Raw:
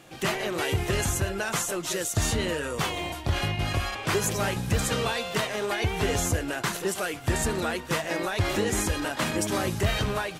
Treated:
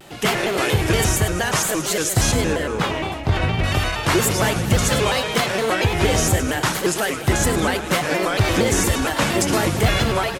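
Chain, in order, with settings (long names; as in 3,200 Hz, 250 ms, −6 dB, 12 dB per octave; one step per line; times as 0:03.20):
0:02.31–0:03.64: low-pass filter 2,300 Hz 6 dB per octave
0:08.23–0:08.72: surface crackle 170 per second −41 dBFS
repeating echo 108 ms, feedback 54%, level −10 dB
pitch modulation by a square or saw wave square 4.3 Hz, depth 160 cents
level +7.5 dB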